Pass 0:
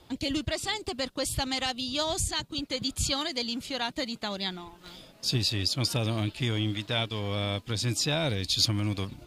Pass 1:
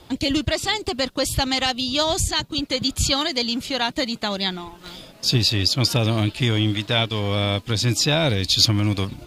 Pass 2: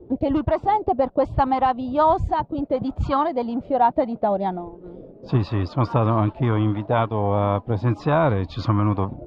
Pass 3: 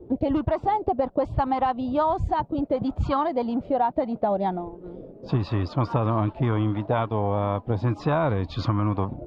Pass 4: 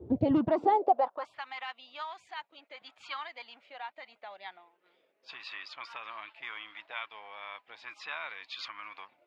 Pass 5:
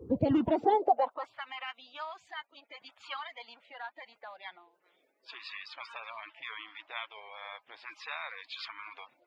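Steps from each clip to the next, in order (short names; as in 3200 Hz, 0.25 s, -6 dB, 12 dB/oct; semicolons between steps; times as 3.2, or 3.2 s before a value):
dynamic EQ 9000 Hz, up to -6 dB, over -52 dBFS, Q 2.9; gain +8.5 dB
envelope low-pass 390–1100 Hz up, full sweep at -16 dBFS
compressor, threshold -19 dBFS, peak gain reduction 6.5 dB
high-pass sweep 83 Hz -> 2200 Hz, 0.09–1.43; gain -4 dB
bin magnitudes rounded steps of 30 dB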